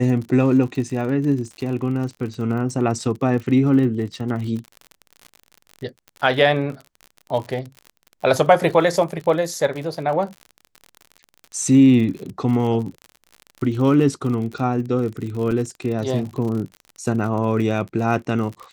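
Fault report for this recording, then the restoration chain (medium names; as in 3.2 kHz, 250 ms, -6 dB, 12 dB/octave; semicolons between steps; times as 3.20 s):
crackle 52 per s -29 dBFS
15.51 s: dropout 4.3 ms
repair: de-click; interpolate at 15.51 s, 4.3 ms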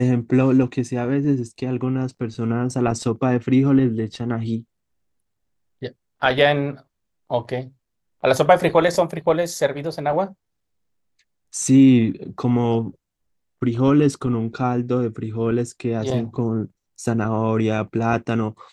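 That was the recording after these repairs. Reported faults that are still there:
nothing left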